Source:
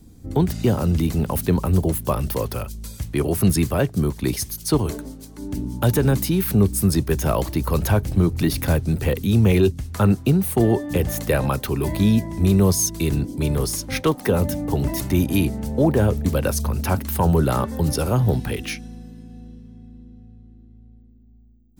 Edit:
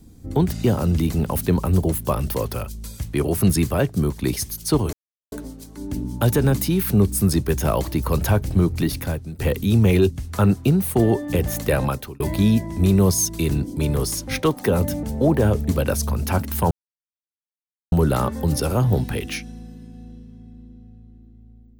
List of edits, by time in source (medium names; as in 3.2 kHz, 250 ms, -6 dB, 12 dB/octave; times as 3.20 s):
4.93 s: insert silence 0.39 s
8.33–9.00 s: fade out linear, to -17 dB
11.46–11.81 s: fade out
14.64–15.60 s: delete
17.28 s: insert silence 1.21 s